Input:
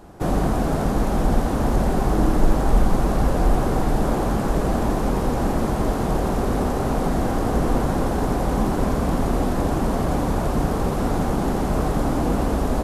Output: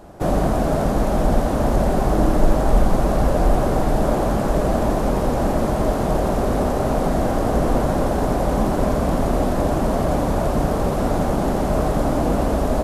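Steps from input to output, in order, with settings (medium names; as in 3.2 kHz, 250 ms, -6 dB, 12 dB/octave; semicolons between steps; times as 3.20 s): peaking EQ 610 Hz +7.5 dB 0.33 oct; trim +1 dB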